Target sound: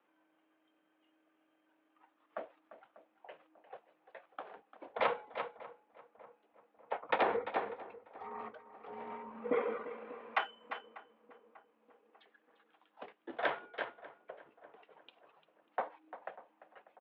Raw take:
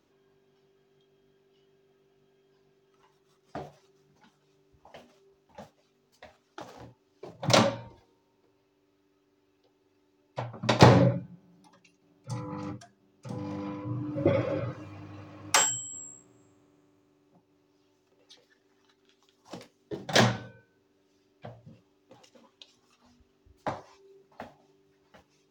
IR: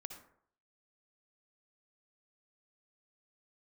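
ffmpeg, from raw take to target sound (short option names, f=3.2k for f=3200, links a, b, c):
-filter_complex "[0:a]acrossover=split=570 2600:gain=0.141 1 0.178[a][b][c];[a][b][c]amix=inputs=3:normalize=0,asplit=2[d][e];[e]aecho=0:1:517:0.2[f];[d][f]amix=inputs=2:normalize=0,highpass=f=300:t=q:w=0.5412,highpass=f=300:t=q:w=1.307,lowpass=f=3.5k:t=q:w=0.5176,lowpass=f=3.5k:t=q:w=0.7071,lowpass=f=3.5k:t=q:w=1.932,afreqshift=-76,atempo=1.5,alimiter=limit=-20.5dB:level=0:latency=1:release=245,asplit=2[g][h];[h]adelay=593,lowpass=f=1.5k:p=1,volume=-17.5dB,asplit=2[i][j];[j]adelay=593,lowpass=f=1.5k:p=1,volume=0.54,asplit=2[k][l];[l]adelay=593,lowpass=f=1.5k:p=1,volume=0.54,asplit=2[m][n];[n]adelay=593,lowpass=f=1.5k:p=1,volume=0.54,asplit=2[o][p];[p]adelay=593,lowpass=f=1.5k:p=1,volume=0.54[q];[i][k][m][o][q]amix=inputs=5:normalize=0[r];[g][r]amix=inputs=2:normalize=0,volume=1.5dB"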